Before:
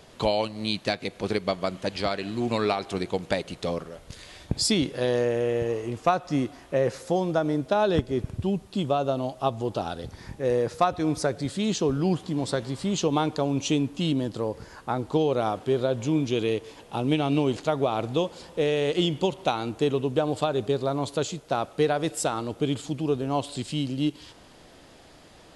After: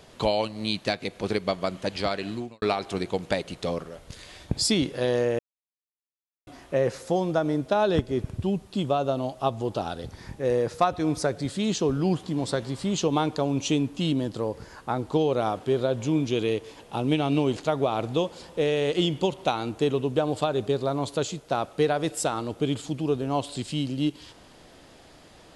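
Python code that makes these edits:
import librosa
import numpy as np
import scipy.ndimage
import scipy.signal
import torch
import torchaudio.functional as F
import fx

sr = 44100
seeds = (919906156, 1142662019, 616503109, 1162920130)

y = fx.edit(x, sr, fx.fade_out_span(start_s=2.33, length_s=0.29, curve='qua'),
    fx.silence(start_s=5.39, length_s=1.08), tone=tone)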